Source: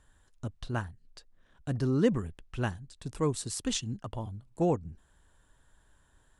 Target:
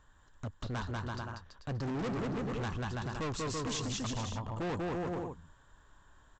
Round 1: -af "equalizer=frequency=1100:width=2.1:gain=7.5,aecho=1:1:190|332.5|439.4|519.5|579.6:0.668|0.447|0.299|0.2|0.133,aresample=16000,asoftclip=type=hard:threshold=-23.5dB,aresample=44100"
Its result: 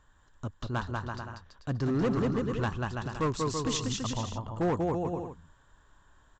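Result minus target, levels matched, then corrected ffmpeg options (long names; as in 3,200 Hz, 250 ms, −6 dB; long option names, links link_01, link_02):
hard clipping: distortion −8 dB
-af "equalizer=frequency=1100:width=2.1:gain=7.5,aecho=1:1:190|332.5|439.4|519.5|579.6:0.668|0.447|0.299|0.2|0.133,aresample=16000,asoftclip=type=hard:threshold=-33.5dB,aresample=44100"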